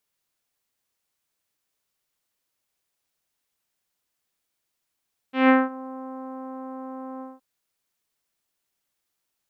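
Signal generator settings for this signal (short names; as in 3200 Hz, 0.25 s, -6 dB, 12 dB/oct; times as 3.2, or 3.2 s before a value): synth note saw C4 24 dB/oct, low-pass 1100 Hz, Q 1.5, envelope 1.5 oct, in 0.45 s, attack 0.159 s, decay 0.20 s, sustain -22 dB, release 0.19 s, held 1.88 s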